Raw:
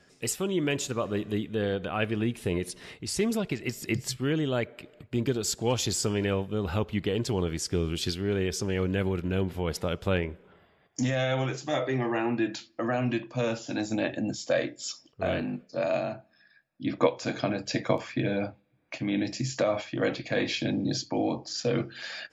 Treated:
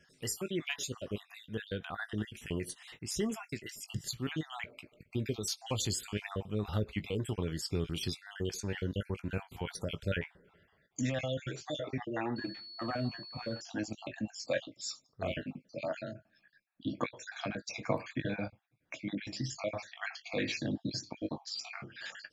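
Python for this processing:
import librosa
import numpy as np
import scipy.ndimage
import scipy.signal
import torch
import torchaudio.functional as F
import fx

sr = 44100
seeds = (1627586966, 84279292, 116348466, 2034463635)

y = fx.spec_dropout(x, sr, seeds[0], share_pct=47)
y = fx.peak_eq(y, sr, hz=430.0, db=-4.5, octaves=2.2)
y = fx.doubler(y, sr, ms=19.0, db=-12.0)
y = fx.pwm(y, sr, carrier_hz=4400.0, at=(12.36, 13.61))
y = F.gain(torch.from_numpy(y), -3.0).numpy()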